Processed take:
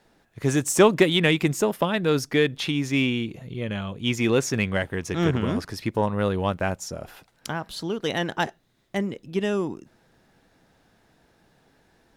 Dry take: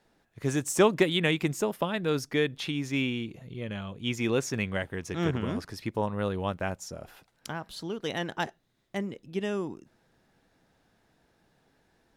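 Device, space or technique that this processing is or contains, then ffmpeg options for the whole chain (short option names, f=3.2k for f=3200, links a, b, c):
parallel distortion: -filter_complex "[0:a]asplit=2[a][b];[b]asoftclip=type=hard:threshold=-25dB,volume=-12.5dB[c];[a][c]amix=inputs=2:normalize=0,volume=4.5dB"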